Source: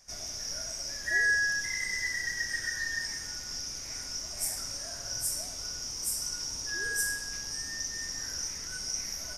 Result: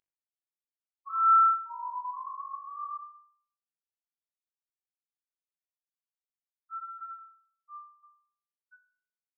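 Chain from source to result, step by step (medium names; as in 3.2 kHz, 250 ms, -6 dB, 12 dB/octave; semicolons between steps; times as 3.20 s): Bessel high-pass 930 Hz, order 4; treble shelf 2.1 kHz +8 dB; upward compressor, threshold -36 dBFS; loudest bins only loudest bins 2; flutter echo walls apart 3.5 m, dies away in 0.55 s; frequency inversion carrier 3 kHz; trim -6.5 dB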